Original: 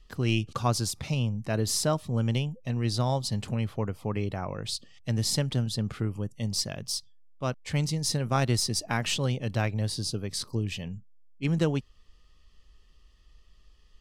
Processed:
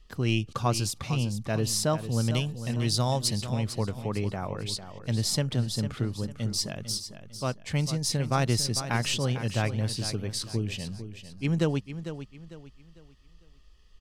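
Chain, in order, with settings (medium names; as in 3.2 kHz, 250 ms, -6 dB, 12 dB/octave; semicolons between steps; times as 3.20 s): 2.30–3.43 s: treble shelf 4.3 kHz +10 dB; feedback delay 450 ms, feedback 34%, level -11 dB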